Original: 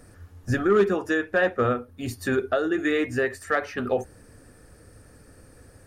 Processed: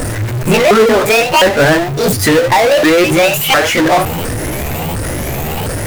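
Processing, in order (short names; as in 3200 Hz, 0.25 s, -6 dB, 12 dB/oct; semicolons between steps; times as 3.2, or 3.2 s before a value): repeated pitch sweeps +10 st, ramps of 0.708 s; power-law curve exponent 0.35; gain +8.5 dB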